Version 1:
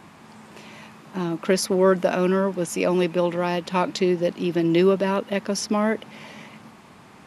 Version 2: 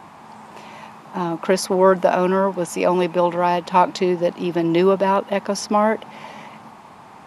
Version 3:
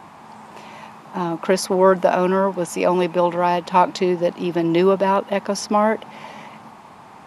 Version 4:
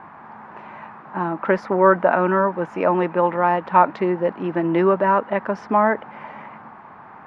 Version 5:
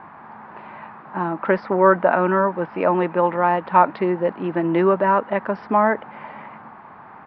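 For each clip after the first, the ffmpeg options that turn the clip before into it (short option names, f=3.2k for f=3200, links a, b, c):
-af "equalizer=f=860:w=1.4:g=11"
-af anull
-af "lowpass=f=1.6k:t=q:w=2.2,volume=-2dB"
-af "aresample=11025,aresample=44100"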